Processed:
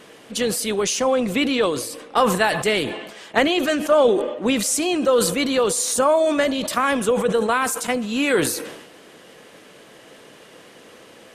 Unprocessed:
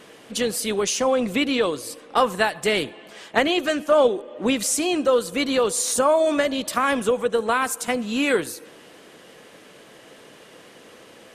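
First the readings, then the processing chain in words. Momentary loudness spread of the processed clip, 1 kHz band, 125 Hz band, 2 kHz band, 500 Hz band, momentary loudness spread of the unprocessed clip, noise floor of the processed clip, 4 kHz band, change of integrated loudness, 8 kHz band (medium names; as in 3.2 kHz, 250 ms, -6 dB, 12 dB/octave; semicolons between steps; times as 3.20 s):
7 LU, +1.5 dB, +6.0 dB, +1.5 dB, +1.5 dB, 7 LU, -47 dBFS, +2.0 dB, +1.5 dB, +2.5 dB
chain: decay stretcher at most 58 dB/s; trim +1 dB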